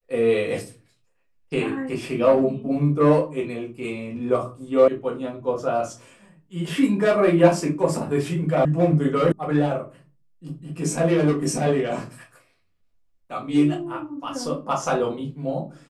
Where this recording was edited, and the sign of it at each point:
4.88 sound cut off
8.65 sound cut off
9.32 sound cut off

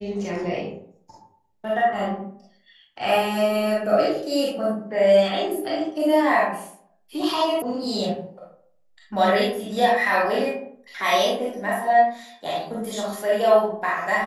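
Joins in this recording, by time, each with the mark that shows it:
7.62 sound cut off

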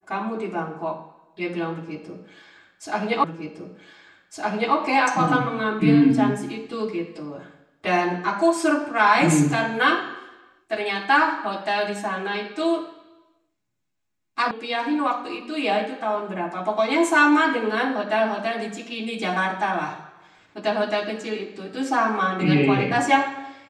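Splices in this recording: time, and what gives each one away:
3.24 repeat of the last 1.51 s
14.51 sound cut off

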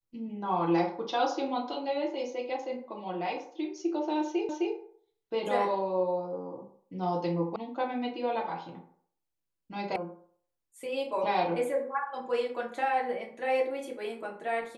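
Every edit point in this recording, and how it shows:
4.49 repeat of the last 0.26 s
7.56 sound cut off
9.96 sound cut off

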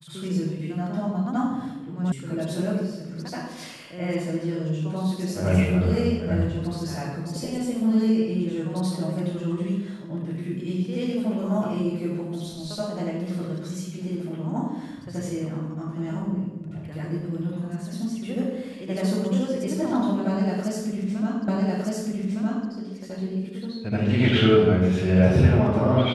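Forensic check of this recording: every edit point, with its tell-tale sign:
2.12 sound cut off
21.48 repeat of the last 1.21 s

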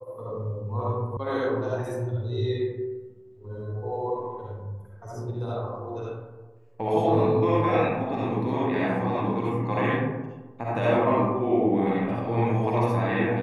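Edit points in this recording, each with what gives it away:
1.17 sound cut off

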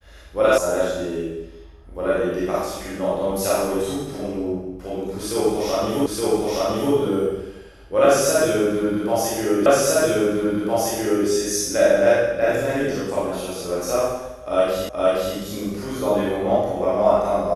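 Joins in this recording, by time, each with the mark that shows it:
0.58 sound cut off
6.06 repeat of the last 0.87 s
9.66 repeat of the last 1.61 s
14.89 repeat of the last 0.47 s

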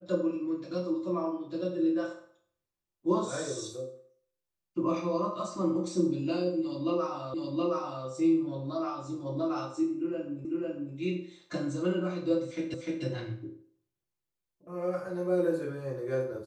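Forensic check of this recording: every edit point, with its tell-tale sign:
7.34 repeat of the last 0.72 s
10.45 repeat of the last 0.5 s
12.74 repeat of the last 0.3 s

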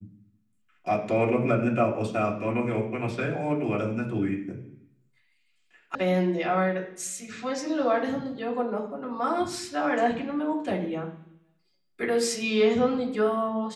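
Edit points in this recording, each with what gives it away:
5.95 sound cut off

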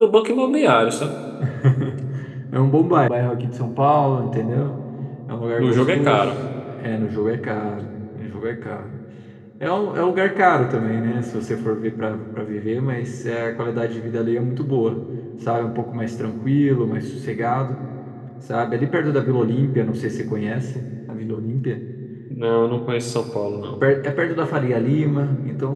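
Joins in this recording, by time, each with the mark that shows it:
3.08 sound cut off

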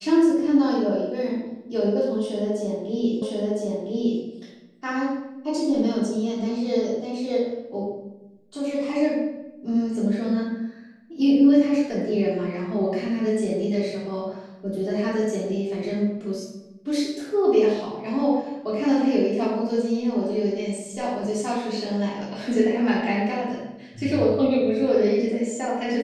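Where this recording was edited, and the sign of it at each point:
3.22 repeat of the last 1.01 s

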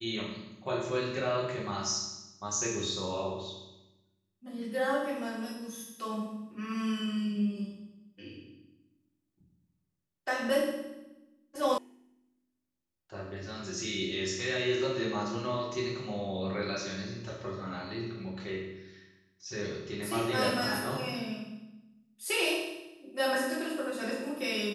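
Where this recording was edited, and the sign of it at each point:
11.78 sound cut off

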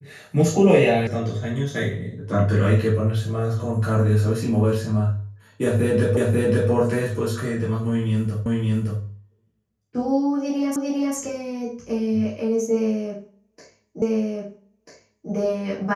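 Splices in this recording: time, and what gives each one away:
1.07 sound cut off
6.17 repeat of the last 0.54 s
8.46 repeat of the last 0.57 s
10.76 repeat of the last 0.4 s
14.02 repeat of the last 1.29 s

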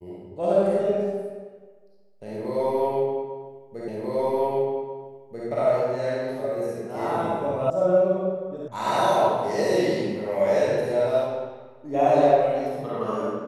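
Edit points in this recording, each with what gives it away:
3.88 repeat of the last 1.59 s
7.7 sound cut off
8.68 sound cut off

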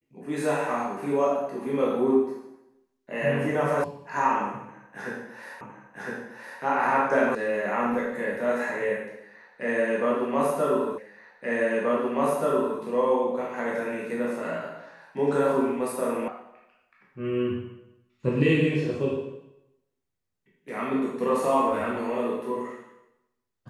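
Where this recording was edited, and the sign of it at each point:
3.84 sound cut off
5.61 repeat of the last 1.01 s
7.35 sound cut off
10.98 repeat of the last 1.83 s
16.28 sound cut off

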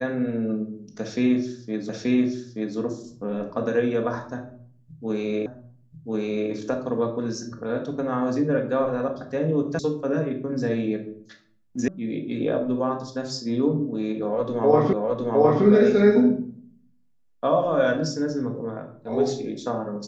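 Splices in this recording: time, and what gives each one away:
1.89 repeat of the last 0.88 s
5.46 repeat of the last 1.04 s
9.79 sound cut off
11.88 sound cut off
14.93 repeat of the last 0.71 s

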